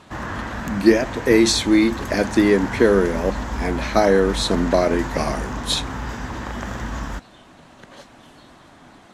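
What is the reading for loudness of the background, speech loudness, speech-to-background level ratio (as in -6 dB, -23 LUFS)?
-29.5 LUFS, -19.5 LUFS, 10.0 dB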